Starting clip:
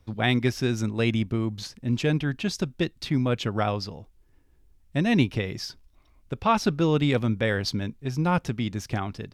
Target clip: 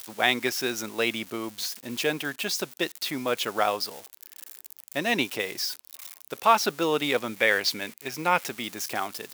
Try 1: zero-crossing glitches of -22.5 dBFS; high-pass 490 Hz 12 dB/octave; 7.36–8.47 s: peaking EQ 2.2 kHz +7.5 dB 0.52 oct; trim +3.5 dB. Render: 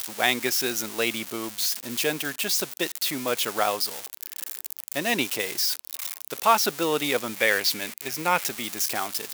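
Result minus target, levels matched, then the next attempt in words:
zero-crossing glitches: distortion +9 dB
zero-crossing glitches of -32 dBFS; high-pass 490 Hz 12 dB/octave; 7.36–8.47 s: peaking EQ 2.2 kHz +7.5 dB 0.52 oct; trim +3.5 dB

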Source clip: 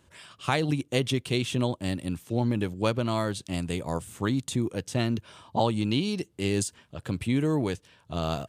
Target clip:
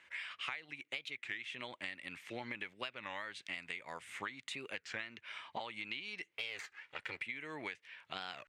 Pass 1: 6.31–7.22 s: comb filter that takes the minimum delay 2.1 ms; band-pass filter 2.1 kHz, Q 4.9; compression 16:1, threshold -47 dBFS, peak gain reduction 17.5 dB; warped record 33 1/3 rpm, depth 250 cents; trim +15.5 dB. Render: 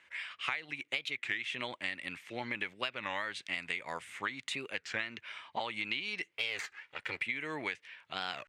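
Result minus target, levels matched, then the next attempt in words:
compression: peak gain reduction -7 dB
6.31–7.22 s: comb filter that takes the minimum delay 2.1 ms; band-pass filter 2.1 kHz, Q 4.9; compression 16:1, threshold -54.5 dBFS, peak gain reduction 24.5 dB; warped record 33 1/3 rpm, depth 250 cents; trim +15.5 dB

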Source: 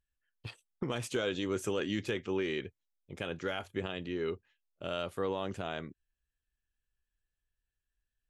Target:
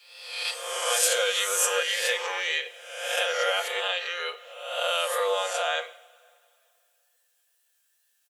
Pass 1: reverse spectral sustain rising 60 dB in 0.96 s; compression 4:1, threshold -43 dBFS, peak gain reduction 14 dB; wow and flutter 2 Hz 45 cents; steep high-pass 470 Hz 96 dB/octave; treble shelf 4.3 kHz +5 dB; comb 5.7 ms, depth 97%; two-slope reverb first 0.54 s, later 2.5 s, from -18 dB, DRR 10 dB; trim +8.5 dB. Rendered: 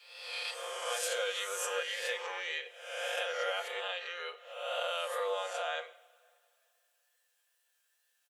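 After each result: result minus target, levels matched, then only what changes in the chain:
compression: peak gain reduction +8 dB; 8 kHz band -4.0 dB
change: compression 4:1, threshold -32.5 dBFS, peak gain reduction 6.5 dB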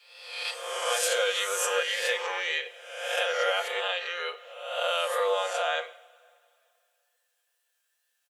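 8 kHz band -4.0 dB
change: treble shelf 4.3 kHz +13 dB

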